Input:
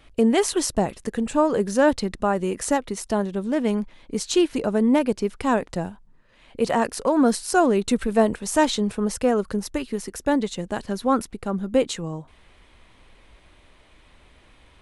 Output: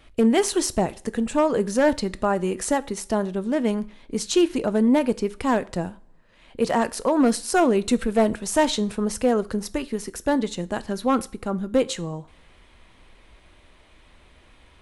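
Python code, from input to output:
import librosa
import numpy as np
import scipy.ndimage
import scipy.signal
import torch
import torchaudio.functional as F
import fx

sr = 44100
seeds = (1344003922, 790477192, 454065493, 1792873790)

y = np.clip(10.0 ** (11.5 / 20.0) * x, -1.0, 1.0) / 10.0 ** (11.5 / 20.0)
y = fx.rev_double_slope(y, sr, seeds[0], early_s=0.4, late_s=2.2, knee_db=-27, drr_db=14.5)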